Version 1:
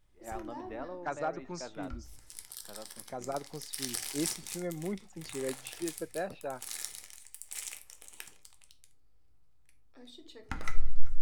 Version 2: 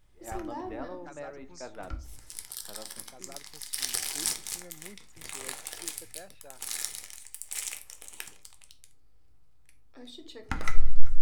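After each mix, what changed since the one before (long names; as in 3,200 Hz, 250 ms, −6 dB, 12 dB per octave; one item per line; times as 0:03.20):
first voice: send +9.0 dB
second voice: add first-order pre-emphasis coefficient 0.8
background +5.5 dB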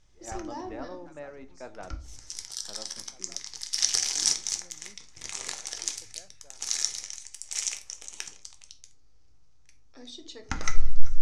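second voice −8.5 dB
background: add low-pass with resonance 6,100 Hz, resonance Q 4.5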